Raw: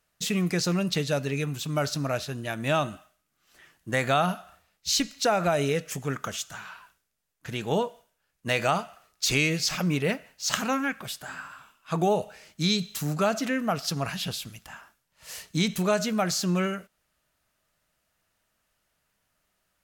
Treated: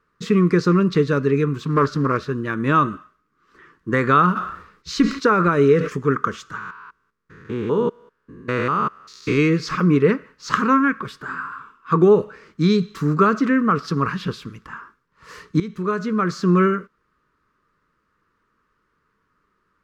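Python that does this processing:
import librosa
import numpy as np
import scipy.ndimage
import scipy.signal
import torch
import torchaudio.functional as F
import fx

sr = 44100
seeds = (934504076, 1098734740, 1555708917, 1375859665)

y = fx.doppler_dist(x, sr, depth_ms=0.36, at=(1.65, 2.19))
y = fx.sustainer(y, sr, db_per_s=78.0, at=(4.35, 5.94), fade=0.02)
y = fx.spec_steps(y, sr, hold_ms=200, at=(6.58, 9.37), fade=0.02)
y = fx.edit(y, sr, fx.fade_in_from(start_s=15.6, length_s=0.96, floor_db=-16.5), tone=tone)
y = fx.curve_eq(y, sr, hz=(100.0, 440.0, 710.0, 1100.0, 2900.0, 4700.0, 12000.0), db=(0, 9, -18, 11, -10, -10, -25))
y = F.gain(torch.from_numpy(y), 5.5).numpy()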